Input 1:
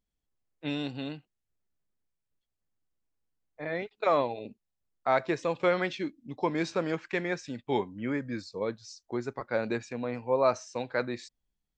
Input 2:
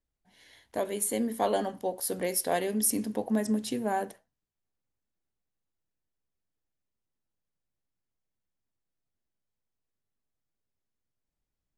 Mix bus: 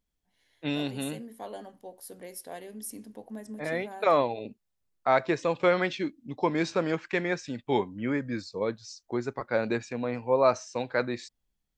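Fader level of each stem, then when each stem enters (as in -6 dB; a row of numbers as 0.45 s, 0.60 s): +2.5 dB, -13.0 dB; 0.00 s, 0.00 s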